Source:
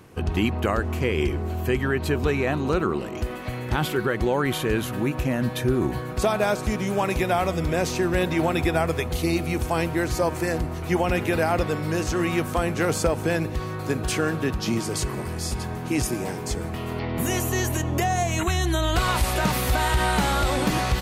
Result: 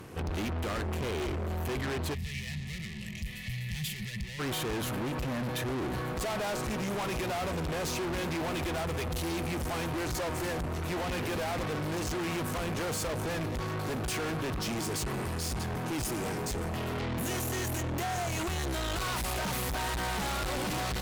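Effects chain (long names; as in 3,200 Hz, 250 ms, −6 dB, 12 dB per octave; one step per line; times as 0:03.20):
tube saturation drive 36 dB, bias 0.45
gain on a spectral selection 0:02.14–0:04.40, 230–1,700 Hz −23 dB
level +4.5 dB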